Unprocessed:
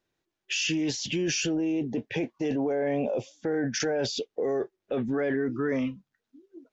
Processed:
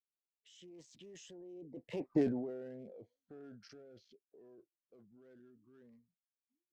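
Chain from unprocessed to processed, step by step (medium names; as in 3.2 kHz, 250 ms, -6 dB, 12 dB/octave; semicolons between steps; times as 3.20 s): local Wiener filter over 15 samples; Doppler pass-by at 2.16 s, 36 m/s, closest 2.1 m; rotary cabinet horn 0.8 Hz, later 6.3 Hz, at 4.17 s; trim +1.5 dB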